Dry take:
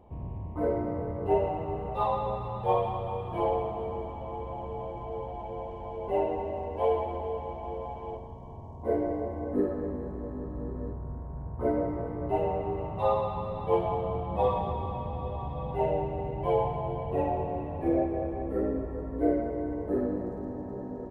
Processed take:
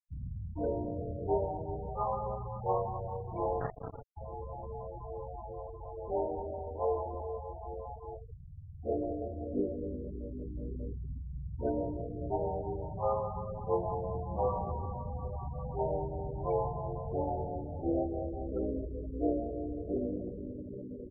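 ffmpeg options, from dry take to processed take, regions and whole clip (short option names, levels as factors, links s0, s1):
-filter_complex "[0:a]asettb=1/sr,asplit=3[s0][s1][s2];[s0]atrim=end=3.604[s3];[s1]atrim=start=3.6:end=4.17,asetpts=PTS-STARTPTS,afade=t=in:d=0.004:c=qsin,afade=t=out:st=0.566:d=0.004:c=qsin,equalizer=f=84:t=o:w=1.9:g=7,aecho=1:1:7.3:0.88,atrim=end_sample=25137,acrusher=bits=3:mix=0:aa=0.5[s4];[s2]atrim=start=4.166[s5];[s3][s4]acrossfade=d=0.004:c1=hsin:c2=qsin[s6];[s6][s5]acrossfade=d=0.004:c1=qsin:c2=hsin,lowpass=f=2300:w=0.5412,lowpass=f=2300:w=1.3066,lowshelf=f=91:g=5.5,afftfilt=real='re*gte(hypot(re,im),0.0398)':imag='im*gte(hypot(re,im),0.0398)':win_size=1024:overlap=0.75,volume=0.531"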